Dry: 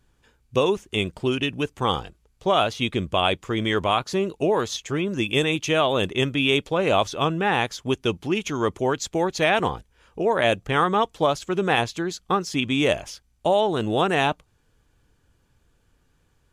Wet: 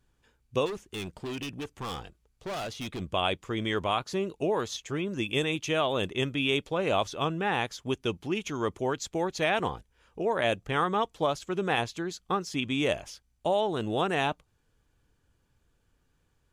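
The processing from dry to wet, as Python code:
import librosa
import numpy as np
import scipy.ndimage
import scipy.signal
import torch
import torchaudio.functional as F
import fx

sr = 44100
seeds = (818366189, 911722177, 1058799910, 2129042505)

y = fx.overload_stage(x, sr, gain_db=26.0, at=(0.65, 3.0), fade=0.02)
y = y * 10.0 ** (-6.5 / 20.0)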